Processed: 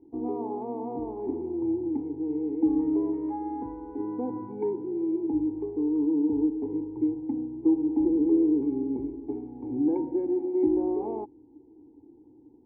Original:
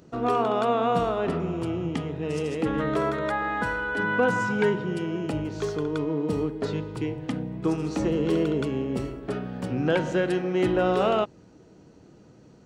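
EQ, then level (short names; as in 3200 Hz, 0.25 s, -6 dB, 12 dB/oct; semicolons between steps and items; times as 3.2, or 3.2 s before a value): vocal tract filter u; fixed phaser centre 900 Hz, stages 8; +7.5 dB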